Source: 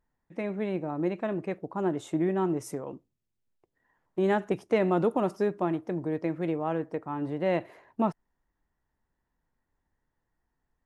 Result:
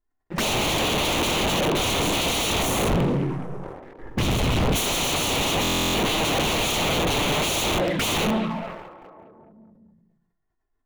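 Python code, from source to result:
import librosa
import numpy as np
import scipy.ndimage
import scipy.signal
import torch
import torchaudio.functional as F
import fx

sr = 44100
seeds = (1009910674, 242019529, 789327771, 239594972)

y = fx.rev_double_slope(x, sr, seeds[0], early_s=0.88, late_s=2.5, knee_db=-19, drr_db=-3.5)
y = (np.mod(10.0 ** (29.5 / 20.0) * y + 1.0, 2.0) - 1.0) / 10.0 ** (29.5 / 20.0)
y = fx.bass_treble(y, sr, bass_db=13, treble_db=-11, at=(2.88, 4.75), fade=0.02)
y = fx.env_flanger(y, sr, rest_ms=2.9, full_db=-33.0)
y = fx.leveller(y, sr, passes=5)
y = fx.high_shelf(y, sr, hz=3600.0, db=-6.5)
y = fx.echo_stepped(y, sr, ms=210, hz=2800.0, octaves=-0.7, feedback_pct=70, wet_db=-11.5)
y = fx.buffer_glitch(y, sr, at_s=(5.62,), block=1024, repeats=13)
y = fx.sustainer(y, sr, db_per_s=48.0)
y = y * librosa.db_to_amplitude(4.0)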